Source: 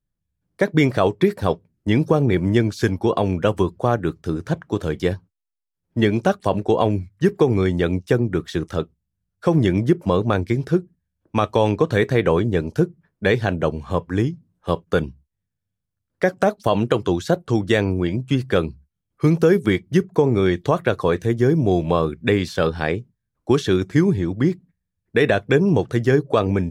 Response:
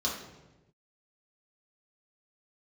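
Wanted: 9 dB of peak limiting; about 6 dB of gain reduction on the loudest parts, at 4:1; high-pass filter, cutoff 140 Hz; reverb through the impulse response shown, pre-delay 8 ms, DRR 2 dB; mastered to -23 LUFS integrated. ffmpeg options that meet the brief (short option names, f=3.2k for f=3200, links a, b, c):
-filter_complex "[0:a]highpass=140,acompressor=threshold=-19dB:ratio=4,alimiter=limit=-15dB:level=0:latency=1,asplit=2[a][b];[1:a]atrim=start_sample=2205,adelay=8[c];[b][c]afir=irnorm=-1:irlink=0,volume=-8.5dB[d];[a][d]amix=inputs=2:normalize=0,volume=1.5dB"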